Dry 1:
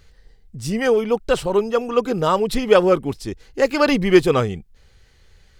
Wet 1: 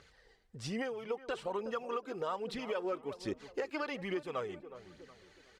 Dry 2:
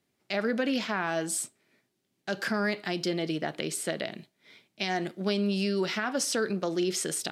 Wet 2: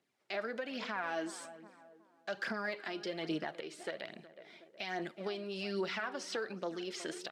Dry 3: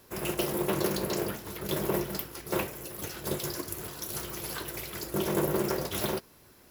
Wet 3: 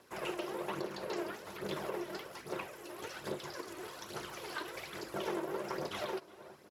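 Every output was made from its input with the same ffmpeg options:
-filter_complex "[0:a]highshelf=frequency=2200:gain=-8.5,acompressor=threshold=-27dB:ratio=5,lowpass=10000,acrossover=split=5200[link_01][link_02];[link_02]acompressor=threshold=-56dB:ratio=4:attack=1:release=60[link_03];[link_01][link_03]amix=inputs=2:normalize=0,highpass=frequency=770:poles=1,asplit=2[link_04][link_05];[link_05]adelay=367,lowpass=frequency=1300:poles=1,volume=-15dB,asplit=2[link_06][link_07];[link_07]adelay=367,lowpass=frequency=1300:poles=1,volume=0.44,asplit=2[link_08][link_09];[link_09]adelay=367,lowpass=frequency=1300:poles=1,volume=0.44,asplit=2[link_10][link_11];[link_11]adelay=367,lowpass=frequency=1300:poles=1,volume=0.44[link_12];[link_04][link_06][link_08][link_10][link_12]amix=inputs=5:normalize=0,aphaser=in_gain=1:out_gain=1:delay=3.3:decay=0.44:speed=1.2:type=triangular,alimiter=level_in=4dB:limit=-24dB:level=0:latency=1:release=445,volume=-4dB,volume=1.5dB"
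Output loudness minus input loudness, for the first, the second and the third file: −20.0, −9.5, −9.0 LU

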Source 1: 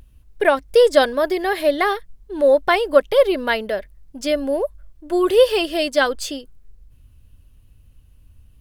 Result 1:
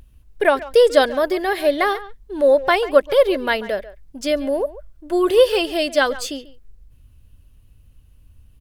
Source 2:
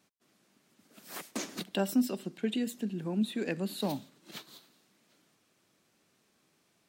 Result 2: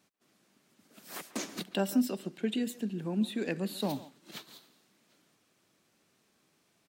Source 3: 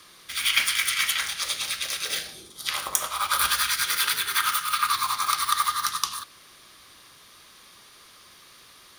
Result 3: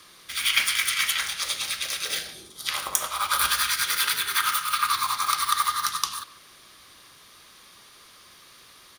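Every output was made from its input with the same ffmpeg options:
-filter_complex "[0:a]asplit=2[link_01][link_02];[link_02]adelay=140,highpass=300,lowpass=3400,asoftclip=type=hard:threshold=-9.5dB,volume=-16dB[link_03];[link_01][link_03]amix=inputs=2:normalize=0"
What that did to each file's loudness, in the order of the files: 0.0, 0.0, 0.0 LU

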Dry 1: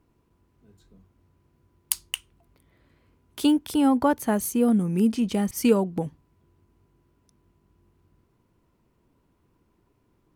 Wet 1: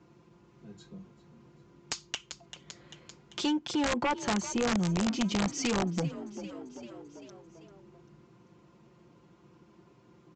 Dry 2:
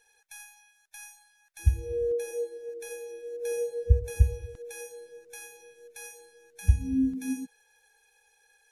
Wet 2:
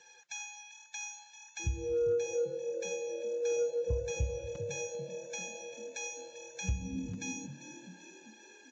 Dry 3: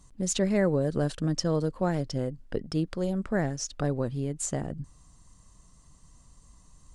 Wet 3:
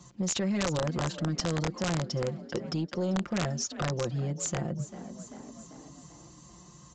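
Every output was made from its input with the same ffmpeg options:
-filter_complex "[0:a]highpass=frequency=74:width=0.5412,highpass=frequency=74:width=1.3066,equalizer=frequency=1800:width_type=o:width=0.22:gain=-2,aecho=1:1:5.7:0.86,acrossover=split=670|1100[link_01][link_02][link_03];[link_01]alimiter=limit=-20.5dB:level=0:latency=1:release=62[link_04];[link_04][link_02][link_03]amix=inputs=3:normalize=0,aeval=exprs='0.841*(cos(1*acos(clip(val(0)/0.841,-1,1)))-cos(1*PI/2))+0.0668*(cos(5*acos(clip(val(0)/0.841,-1,1)))-cos(5*PI/2))+0.299*(cos(7*acos(clip(val(0)/0.841,-1,1)))-cos(7*PI/2))':channel_layout=same,asplit=6[link_05][link_06][link_07][link_08][link_09][link_10];[link_06]adelay=392,afreqshift=39,volume=-16dB[link_11];[link_07]adelay=784,afreqshift=78,volume=-21.7dB[link_12];[link_08]adelay=1176,afreqshift=117,volume=-27.4dB[link_13];[link_09]adelay=1568,afreqshift=156,volume=-33dB[link_14];[link_10]adelay=1960,afreqshift=195,volume=-38.7dB[link_15];[link_05][link_11][link_12][link_13][link_14][link_15]amix=inputs=6:normalize=0,aresample=16000,aeval=exprs='(mod(10.6*val(0)+1,2)-1)/10.6':channel_layout=same,aresample=44100,acompressor=threshold=-49dB:ratio=1.5,volume=6dB"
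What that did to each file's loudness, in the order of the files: −7.5, −6.5, −2.0 LU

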